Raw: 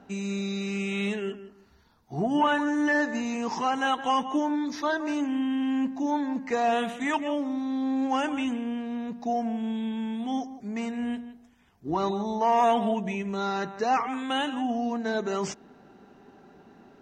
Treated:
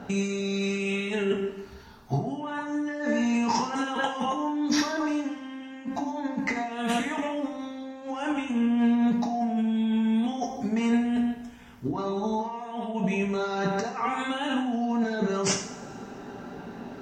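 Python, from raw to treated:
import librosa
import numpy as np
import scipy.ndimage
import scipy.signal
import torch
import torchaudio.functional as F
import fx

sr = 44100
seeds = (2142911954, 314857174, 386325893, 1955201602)

y = fx.low_shelf(x, sr, hz=140.0, db=-12.0, at=(3.69, 4.25))
y = fx.over_compress(y, sr, threshold_db=-35.0, ratio=-1.0)
y = fx.rev_double_slope(y, sr, seeds[0], early_s=0.53, late_s=1.9, knee_db=-18, drr_db=1.0)
y = F.gain(torch.from_numpy(y), 4.0).numpy()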